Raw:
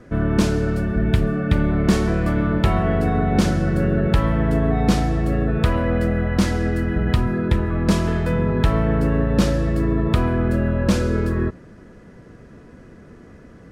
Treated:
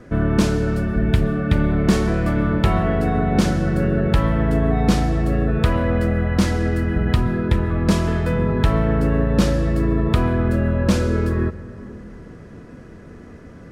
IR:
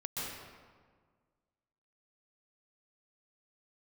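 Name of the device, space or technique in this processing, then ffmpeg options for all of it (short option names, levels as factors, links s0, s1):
compressed reverb return: -filter_complex "[0:a]asplit=2[s0][s1];[1:a]atrim=start_sample=2205[s2];[s1][s2]afir=irnorm=-1:irlink=0,acompressor=threshold=0.0562:ratio=6,volume=0.473[s3];[s0][s3]amix=inputs=2:normalize=0"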